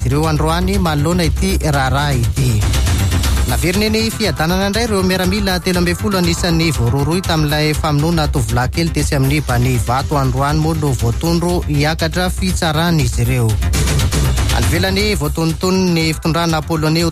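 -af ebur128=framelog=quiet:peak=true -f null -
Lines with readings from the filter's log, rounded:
Integrated loudness:
  I:         -15.3 LUFS
  Threshold: -25.3 LUFS
Loudness range:
  LRA:         0.6 LU
  Threshold: -35.3 LUFS
  LRA low:   -15.7 LUFS
  LRA high:  -15.0 LUFS
True peak:
  Peak:       -4.4 dBFS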